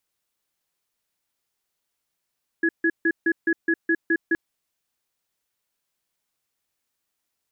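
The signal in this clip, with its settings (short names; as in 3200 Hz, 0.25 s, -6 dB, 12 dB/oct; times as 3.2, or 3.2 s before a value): cadence 332 Hz, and 1680 Hz, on 0.06 s, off 0.15 s, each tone -20 dBFS 1.72 s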